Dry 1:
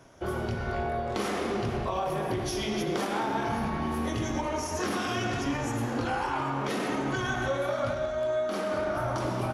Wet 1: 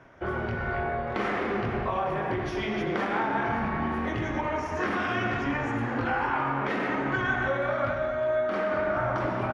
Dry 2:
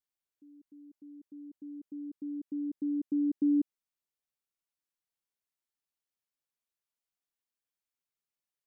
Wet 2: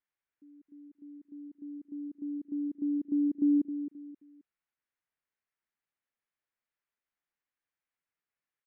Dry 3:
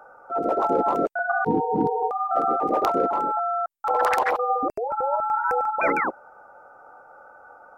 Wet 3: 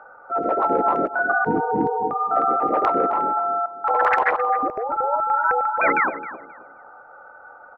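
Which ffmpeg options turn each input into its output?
-filter_complex "[0:a]lowpass=f=1900:t=q:w=1.8,aemphasis=mode=production:type=50kf,asplit=2[s0][s1];[s1]adelay=265,lowpass=f=1300:p=1,volume=0.282,asplit=2[s2][s3];[s3]adelay=265,lowpass=f=1300:p=1,volume=0.32,asplit=2[s4][s5];[s5]adelay=265,lowpass=f=1300:p=1,volume=0.32[s6];[s2][s4][s6]amix=inputs=3:normalize=0[s7];[s0][s7]amix=inputs=2:normalize=0"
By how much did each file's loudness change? +2.0 LU, +1.0 LU, +3.0 LU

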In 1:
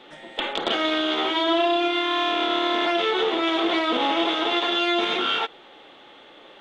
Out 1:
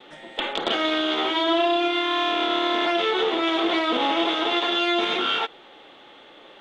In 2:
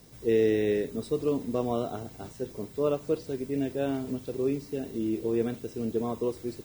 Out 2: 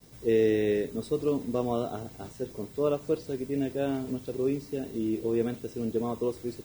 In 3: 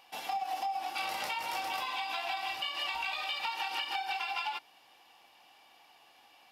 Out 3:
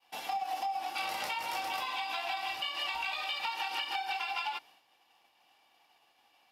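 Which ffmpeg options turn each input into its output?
-af "agate=range=0.0224:threshold=0.002:ratio=3:detection=peak"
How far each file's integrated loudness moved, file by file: 0.0 LU, 0.0 LU, 0.0 LU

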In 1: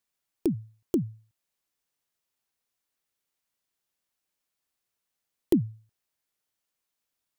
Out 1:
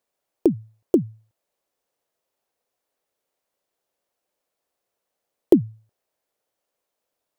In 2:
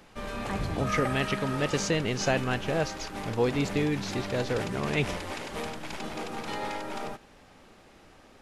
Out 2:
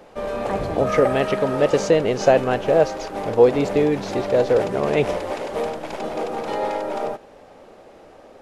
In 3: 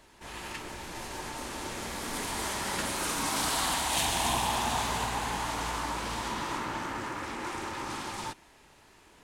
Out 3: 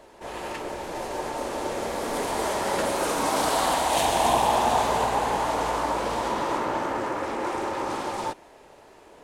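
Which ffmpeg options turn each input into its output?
-af "equalizer=f=550:w=0.84:g=15"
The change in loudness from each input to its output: +8.5 LU, +9.5 LU, +6.0 LU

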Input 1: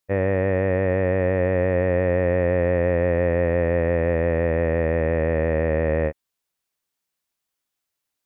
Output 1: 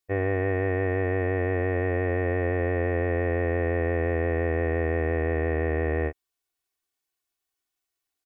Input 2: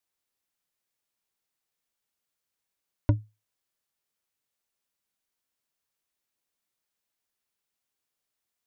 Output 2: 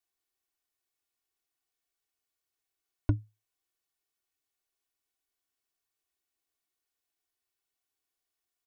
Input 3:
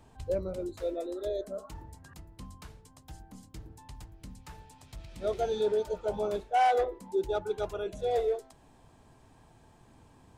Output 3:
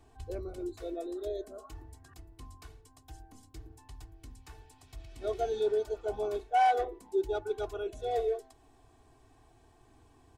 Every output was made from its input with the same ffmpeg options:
-af "aecho=1:1:2.7:0.79,volume=0.562"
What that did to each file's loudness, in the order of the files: -4.5 LU, -3.5 LU, -1.5 LU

